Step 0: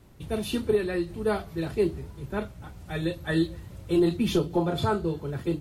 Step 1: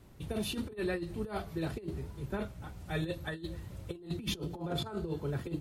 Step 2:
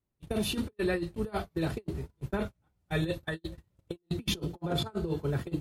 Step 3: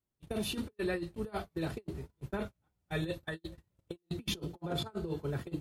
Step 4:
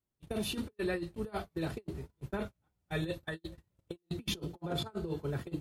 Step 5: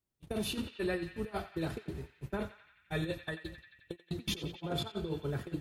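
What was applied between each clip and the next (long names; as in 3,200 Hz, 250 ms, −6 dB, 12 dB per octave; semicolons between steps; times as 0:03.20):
compressor whose output falls as the input rises −29 dBFS, ratio −0.5; level −6 dB
noise gate −38 dBFS, range −33 dB; level +4.5 dB
low-shelf EQ 150 Hz −3 dB; level −4 dB
no processing that can be heard
feedback echo with a band-pass in the loop 88 ms, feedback 80%, band-pass 2,300 Hz, level −10.5 dB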